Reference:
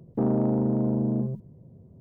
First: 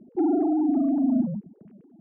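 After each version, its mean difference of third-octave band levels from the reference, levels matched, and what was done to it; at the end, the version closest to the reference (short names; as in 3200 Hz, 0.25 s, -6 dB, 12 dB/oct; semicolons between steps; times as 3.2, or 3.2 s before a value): 6.5 dB: sine-wave speech; gain +2 dB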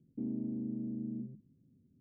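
4.5 dB: vocal tract filter i; gain -8 dB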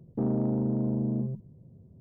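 1.0 dB: low shelf 380 Hz +7 dB; gain -8.5 dB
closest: third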